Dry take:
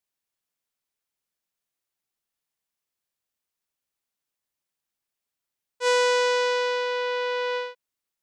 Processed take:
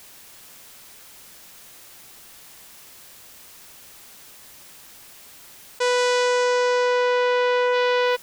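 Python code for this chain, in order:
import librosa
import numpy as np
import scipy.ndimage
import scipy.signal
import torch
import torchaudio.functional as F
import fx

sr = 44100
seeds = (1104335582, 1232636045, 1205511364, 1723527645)

y = fx.high_shelf(x, sr, hz=8300.0, db=5.5, at=(5.98, 6.44))
y = y + 10.0 ** (-13.0 / 20.0) * np.pad(y, (int(417 * sr / 1000.0), 0))[:len(y)]
y = fx.env_flatten(y, sr, amount_pct=100)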